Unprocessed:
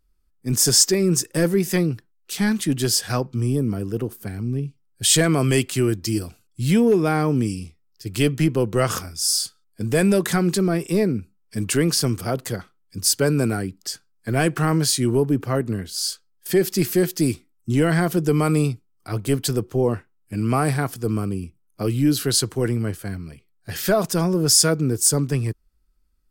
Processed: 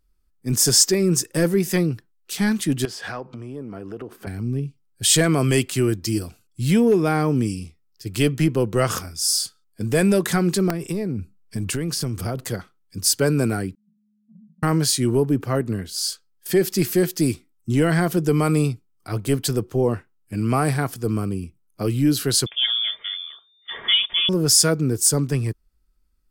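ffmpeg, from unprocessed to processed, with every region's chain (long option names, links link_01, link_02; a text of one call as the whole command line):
ffmpeg -i in.wav -filter_complex "[0:a]asettb=1/sr,asplit=3[link_01][link_02][link_03];[link_01]atrim=end=2.854[link_04];[link_02]atrim=start=2.85:end=4.27,asetpts=PTS-STARTPTS,afade=type=in:duration=0.004:curve=qsin,afade=type=out:start_time=1.416:duration=0.004:curve=qsin,highshelf=frequency=4200:gain=-9.5,acompressor=threshold=-35dB:ratio=6:attack=3.2:release=140:knee=1:detection=peak,asplit=2[link_05][link_06];[link_06]highpass=frequency=720:poles=1,volume=19dB,asoftclip=type=tanh:threshold=-13.5dB[link_07];[link_05][link_07]amix=inputs=2:normalize=0,lowpass=frequency=2000:poles=1,volume=-6dB[link_08];[link_03]atrim=start=4.266[link_09];[link_04][link_08]acrossfade=duration=0.004:curve1=hsin:curve2=qsin[link_10];[link_10][link_09]acrossfade=duration=0.004:curve1=qsin:curve2=hsin,asettb=1/sr,asplit=3[link_11][link_12][link_13];[link_11]atrim=end=10.704[link_14];[link_12]atrim=start=10.7:end=12.45,asetpts=PTS-STARTPTS,afade=type=in:duration=0.004:curve=qsin,afade=type=out:start_time=1.746:duration=0.004:curve=qsin,lowshelf=frequency=180:gain=8,acompressor=threshold=-21dB:ratio=12:attack=3.2:release=140:knee=1:detection=peak,aeval=exprs='(mod(4.47*val(0)+1,2)-1)/4.47':channel_layout=same[link_15];[link_13]atrim=start=12.446[link_16];[link_14][link_15]acrossfade=duration=0.004:curve1=hsin:curve2=qsin[link_17];[link_17][link_16]acrossfade=duration=0.004:curve1=qsin:curve2=hsin,asettb=1/sr,asplit=3[link_18][link_19][link_20];[link_18]atrim=end=13.754[link_21];[link_19]atrim=start=13.75:end=14.63,asetpts=PTS-STARTPTS,afade=type=in:duration=0.004:curve=qsin,afade=type=out:start_time=0.876:duration=0.004:curve=qsin,aeval=exprs='val(0)*sin(2*PI*210*n/s)':channel_layout=same,asuperpass=centerf=190:order=12:qfactor=2.8,acompressor=threshold=-55dB:ratio=2:attack=3.2:release=140:knee=1:detection=peak[link_22];[link_20]atrim=start=14.626[link_23];[link_21][link_22]acrossfade=duration=0.004:curve1=hsin:curve2=qsin[link_24];[link_24][link_23]acrossfade=duration=0.004:curve1=qsin:curve2=hsin,asettb=1/sr,asplit=3[link_25][link_26][link_27];[link_25]atrim=end=22.464[link_28];[link_26]atrim=start=22.46:end=24.29,asetpts=PTS-STARTPTS,afade=type=in:duration=0.004:curve=qsin,afade=type=out:start_time=1.826:duration=0.004:curve=qsin,aecho=1:1:4.1:0.39,atrim=end_sample=80703,lowpass=frequency=3100:width_type=q:width=0.5098,lowpass=frequency=3100:width_type=q:width=0.6013,lowpass=frequency=3100:width_type=q:width=0.9,lowpass=frequency=3100:width_type=q:width=2.563,afreqshift=-3600[link_29];[link_27]atrim=start=24.286[link_30];[link_28][link_29]acrossfade=duration=0.004:curve1=hsin:curve2=qsin[link_31];[link_31][link_30]acrossfade=duration=0.004:curve1=qsin:curve2=hsin" out.wav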